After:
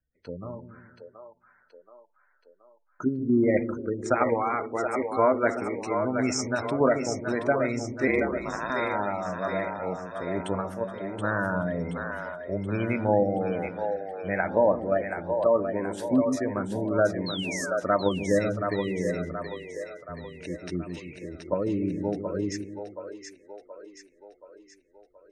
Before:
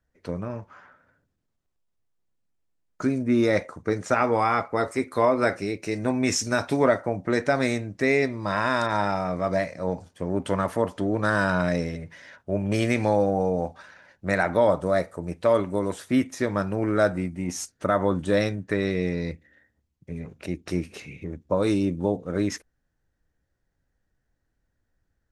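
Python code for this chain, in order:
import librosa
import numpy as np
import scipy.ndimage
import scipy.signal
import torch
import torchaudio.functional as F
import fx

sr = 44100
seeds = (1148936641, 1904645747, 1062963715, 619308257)

p1 = fx.spec_gate(x, sr, threshold_db=-20, keep='strong')
p2 = fx.noise_reduce_blind(p1, sr, reduce_db=6)
p3 = fx.level_steps(p2, sr, step_db=21)
p4 = p2 + F.gain(torch.from_numpy(p3), -1.0).numpy()
p5 = fx.ring_mod(p4, sr, carrier_hz=57.0, at=(8.07, 8.7))
p6 = fx.comb_fb(p5, sr, f0_hz=190.0, decay_s=0.2, harmonics='all', damping=0.0, mix_pct=70, at=(10.6, 11.18), fade=0.02)
p7 = fx.spec_paint(p6, sr, seeds[0], shape='fall', start_s=17.26, length_s=0.51, low_hz=1200.0, high_hz=4400.0, level_db=-30.0)
p8 = p7 + fx.echo_split(p7, sr, split_hz=400.0, low_ms=148, high_ms=726, feedback_pct=52, wet_db=-6, dry=0)
y = F.gain(torch.from_numpy(p8), -5.5).numpy()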